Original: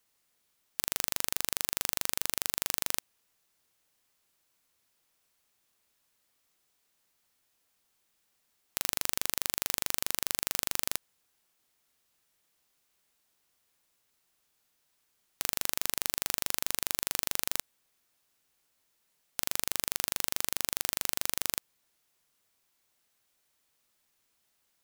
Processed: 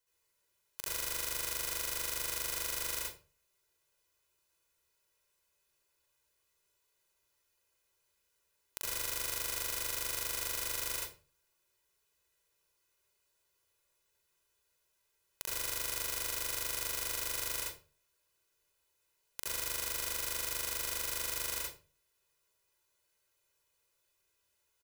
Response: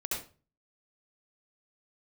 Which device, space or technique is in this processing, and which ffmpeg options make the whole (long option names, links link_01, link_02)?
microphone above a desk: -filter_complex "[0:a]aecho=1:1:2:0.74[link_01];[1:a]atrim=start_sample=2205[link_02];[link_01][link_02]afir=irnorm=-1:irlink=0,volume=-8.5dB"